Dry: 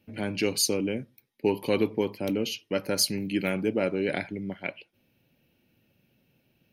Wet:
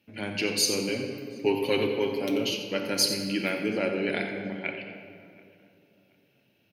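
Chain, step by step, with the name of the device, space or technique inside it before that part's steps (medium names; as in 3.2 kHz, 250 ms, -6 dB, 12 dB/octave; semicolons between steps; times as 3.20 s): PA in a hall (high-pass 100 Hz; peaking EQ 3 kHz +6 dB 2.7 oct; delay 89 ms -11.5 dB; reverberation RT60 2.3 s, pre-delay 3 ms, DRR 3.5 dB); 0.88–2.51 s: comb 7.4 ms, depth 64%; tape echo 728 ms, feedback 34%, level -23 dB, low-pass 2.2 kHz; trim -4 dB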